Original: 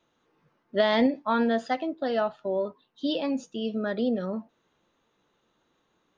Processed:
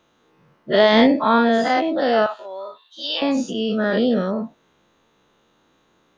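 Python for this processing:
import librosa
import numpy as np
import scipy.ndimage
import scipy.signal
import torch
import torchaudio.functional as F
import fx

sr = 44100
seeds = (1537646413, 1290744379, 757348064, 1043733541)

y = fx.spec_dilate(x, sr, span_ms=120)
y = fx.highpass(y, sr, hz=1100.0, slope=12, at=(2.26, 3.22))
y = y * 10.0 ** (5.0 / 20.0)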